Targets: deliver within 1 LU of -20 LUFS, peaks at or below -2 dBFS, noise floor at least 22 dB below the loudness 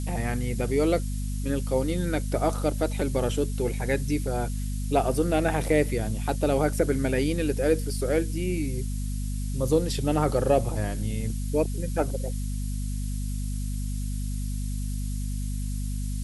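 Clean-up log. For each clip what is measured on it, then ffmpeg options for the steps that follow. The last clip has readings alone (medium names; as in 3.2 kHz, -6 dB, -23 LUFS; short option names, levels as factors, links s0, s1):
hum 50 Hz; highest harmonic 250 Hz; hum level -27 dBFS; noise floor -30 dBFS; noise floor target -50 dBFS; loudness -27.5 LUFS; peak level -8.5 dBFS; loudness target -20.0 LUFS
-> -af "bandreject=f=50:t=h:w=4,bandreject=f=100:t=h:w=4,bandreject=f=150:t=h:w=4,bandreject=f=200:t=h:w=4,bandreject=f=250:t=h:w=4"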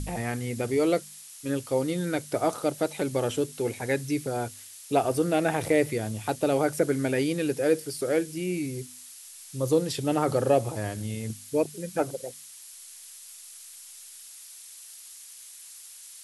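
hum not found; noise floor -47 dBFS; noise floor target -50 dBFS
-> -af "afftdn=nr=6:nf=-47"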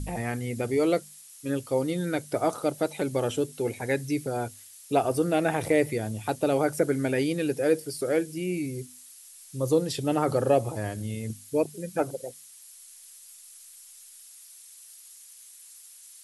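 noise floor -50 dBFS; loudness -28.0 LUFS; peak level -10.5 dBFS; loudness target -20.0 LUFS
-> -af "volume=2.51"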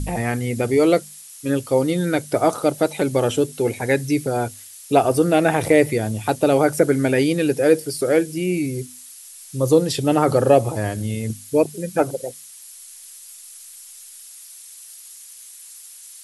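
loudness -20.0 LUFS; peak level -2.5 dBFS; noise floor -42 dBFS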